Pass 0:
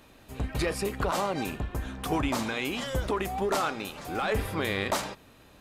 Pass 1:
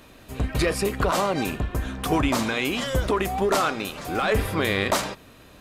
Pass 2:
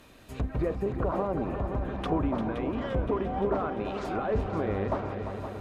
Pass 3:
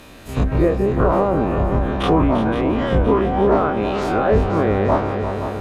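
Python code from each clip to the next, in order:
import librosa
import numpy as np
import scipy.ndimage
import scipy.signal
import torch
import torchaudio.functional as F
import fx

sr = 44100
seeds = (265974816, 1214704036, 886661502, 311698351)

y1 = fx.notch(x, sr, hz=840.0, q=12.0)
y1 = F.gain(torch.from_numpy(y1), 6.0).numpy()
y2 = fx.env_lowpass_down(y1, sr, base_hz=890.0, full_db=-21.5)
y2 = fx.echo_heads(y2, sr, ms=173, heads='second and third', feedback_pct=68, wet_db=-10)
y2 = F.gain(torch.from_numpy(y2), -5.0).numpy()
y3 = fx.spec_dilate(y2, sr, span_ms=60)
y3 = F.gain(torch.from_numpy(y3), 8.5).numpy()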